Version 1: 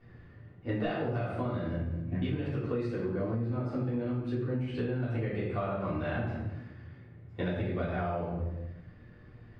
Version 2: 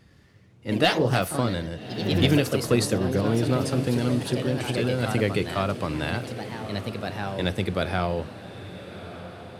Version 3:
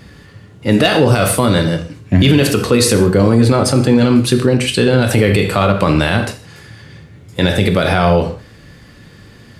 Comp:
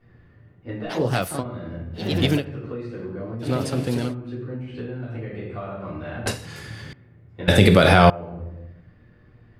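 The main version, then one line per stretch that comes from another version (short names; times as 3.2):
1
0.92–1.41 from 2, crossfade 0.06 s
1.98–2.4 from 2, crossfade 0.10 s
3.44–4.1 from 2, crossfade 0.10 s
6.26–6.93 from 3
7.48–8.1 from 3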